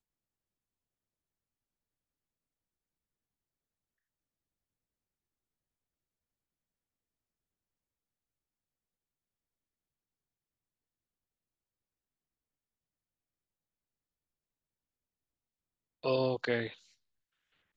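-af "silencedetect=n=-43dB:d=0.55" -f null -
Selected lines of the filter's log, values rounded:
silence_start: 0.00
silence_end: 16.03 | silence_duration: 16.03
silence_start: 16.73
silence_end: 17.76 | silence_duration: 1.03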